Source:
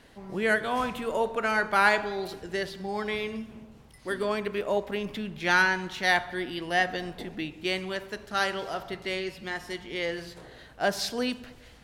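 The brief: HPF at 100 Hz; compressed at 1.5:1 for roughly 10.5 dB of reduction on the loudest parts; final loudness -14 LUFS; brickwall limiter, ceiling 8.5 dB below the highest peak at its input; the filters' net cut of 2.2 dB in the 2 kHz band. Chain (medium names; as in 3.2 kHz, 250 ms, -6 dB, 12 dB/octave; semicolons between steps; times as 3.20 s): high-pass 100 Hz; peaking EQ 2 kHz -3 dB; compression 1.5:1, threshold -49 dBFS; trim +27 dB; peak limiter -2.5 dBFS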